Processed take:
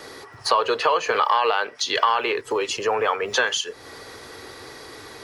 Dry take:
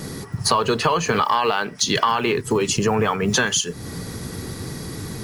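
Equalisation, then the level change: dynamic EQ 520 Hz, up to +6 dB, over -38 dBFS, Q 4.1; three-band isolator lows -18 dB, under 380 Hz, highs -13 dB, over 4800 Hz; bell 180 Hz -13 dB 0.7 oct; 0.0 dB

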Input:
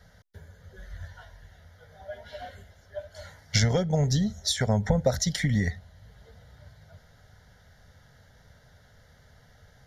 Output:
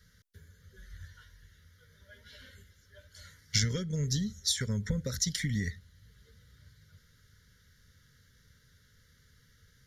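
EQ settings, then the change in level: Butterworth band-stop 740 Hz, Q 0.93; high shelf 4100 Hz +8.5 dB; -7.0 dB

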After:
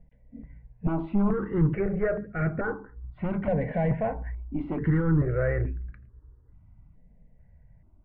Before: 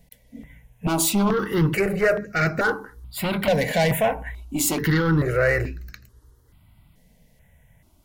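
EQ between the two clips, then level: LPF 2200 Hz 24 dB/oct; air absorption 200 m; tilt -2.5 dB/oct; -8.5 dB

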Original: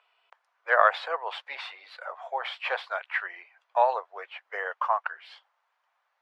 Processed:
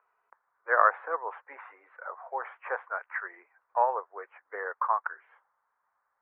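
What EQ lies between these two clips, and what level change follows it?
Bessel low-pass 940 Hz, order 8; bell 660 Hz -13.5 dB 1 oct; +8.5 dB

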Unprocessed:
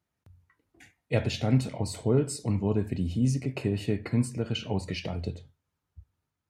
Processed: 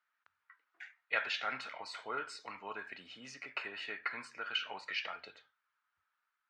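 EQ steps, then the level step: resonant high-pass 1400 Hz, resonance Q 3.2; air absorption 200 m; +1.5 dB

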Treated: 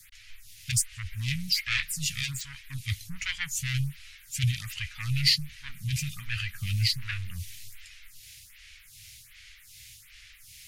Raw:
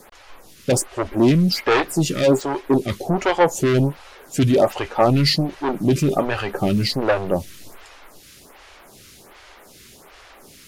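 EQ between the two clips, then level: elliptic band-stop 110–2100 Hz, stop band 60 dB; -1.5 dB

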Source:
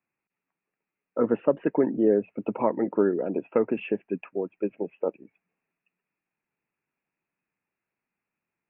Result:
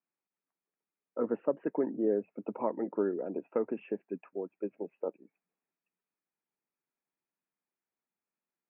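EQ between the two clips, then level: HPF 190 Hz 12 dB/oct; LPF 1700 Hz 12 dB/oct; -7.5 dB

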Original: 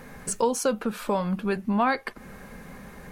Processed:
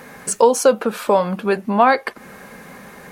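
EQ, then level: dynamic EQ 560 Hz, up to +6 dB, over -37 dBFS, Q 0.9; HPF 310 Hz 6 dB/oct; +7.5 dB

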